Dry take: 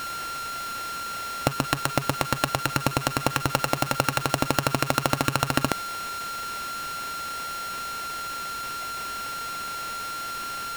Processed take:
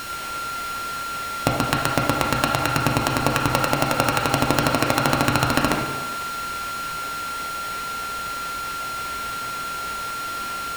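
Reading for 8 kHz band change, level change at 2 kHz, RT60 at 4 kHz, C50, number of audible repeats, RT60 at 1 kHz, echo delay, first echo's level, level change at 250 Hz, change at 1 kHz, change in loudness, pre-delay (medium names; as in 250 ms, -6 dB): +2.0 dB, +4.5 dB, 1.0 s, 2.5 dB, no echo, 1.4 s, no echo, no echo, +5.5 dB, +4.5 dB, +4.5 dB, 6 ms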